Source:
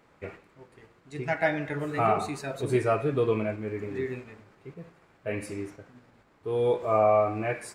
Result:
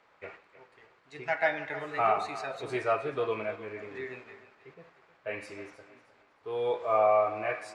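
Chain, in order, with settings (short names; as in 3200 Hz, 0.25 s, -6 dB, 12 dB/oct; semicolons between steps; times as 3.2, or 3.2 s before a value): three-band isolator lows -15 dB, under 500 Hz, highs -18 dB, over 6100 Hz; thinning echo 0.312 s, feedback 30%, high-pass 220 Hz, level -14.5 dB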